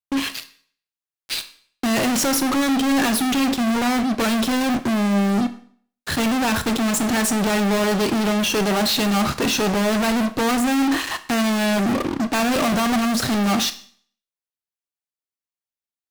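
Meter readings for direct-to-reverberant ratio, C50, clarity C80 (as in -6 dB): 10.5 dB, 14.5 dB, 18.0 dB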